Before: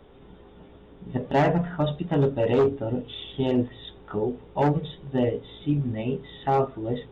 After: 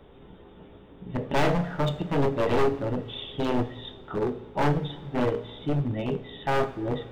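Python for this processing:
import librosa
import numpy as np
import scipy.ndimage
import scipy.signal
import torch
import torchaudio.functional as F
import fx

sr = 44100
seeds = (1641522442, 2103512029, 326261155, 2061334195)

y = np.minimum(x, 2.0 * 10.0 ** (-21.5 / 20.0) - x)
y = fx.rev_double_slope(y, sr, seeds[0], early_s=0.53, late_s=3.1, knee_db=-14, drr_db=10.0)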